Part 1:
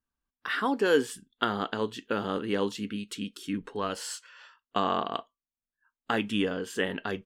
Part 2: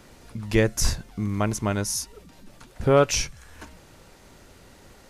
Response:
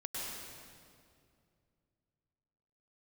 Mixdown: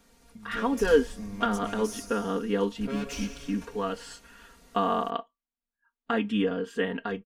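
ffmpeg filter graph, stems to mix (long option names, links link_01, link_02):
-filter_complex "[0:a]lowpass=frequency=2000:poles=1,volume=-4.5dB[link_01];[1:a]acrossover=split=3100[link_02][link_03];[link_03]acompressor=threshold=-33dB:ratio=4:attack=1:release=60[link_04];[link_02][link_04]amix=inputs=2:normalize=0,highshelf=frequency=4800:gain=5.5,asoftclip=type=tanh:threshold=-24dB,volume=-16.5dB,asplit=2[link_05][link_06];[link_06]volume=-5dB[link_07];[2:a]atrim=start_sample=2205[link_08];[link_07][link_08]afir=irnorm=-1:irlink=0[link_09];[link_01][link_05][link_09]amix=inputs=3:normalize=0,aecho=1:1:4.3:0.86,dynaudnorm=framelen=420:gausssize=3:maxgain=3.5dB"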